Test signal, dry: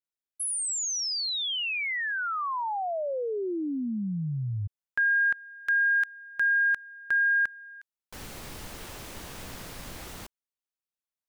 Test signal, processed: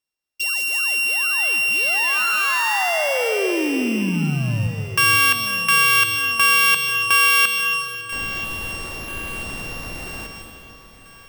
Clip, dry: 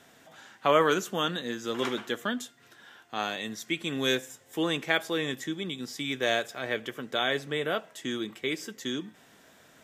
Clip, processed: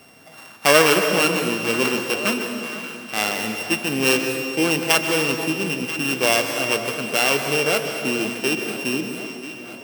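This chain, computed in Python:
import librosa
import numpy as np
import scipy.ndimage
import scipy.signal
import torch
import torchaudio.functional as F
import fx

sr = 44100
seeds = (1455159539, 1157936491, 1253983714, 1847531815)

p1 = np.r_[np.sort(x[:len(x) // 16 * 16].reshape(-1, 16), axis=1).ravel(), x[len(x) // 16 * 16:]]
p2 = p1 + fx.echo_alternate(p1, sr, ms=494, hz=900.0, feedback_pct=72, wet_db=-12.0, dry=0)
p3 = fx.rev_plate(p2, sr, seeds[0], rt60_s=1.9, hf_ratio=0.95, predelay_ms=115, drr_db=5.5)
y = F.gain(torch.from_numpy(p3), 8.0).numpy()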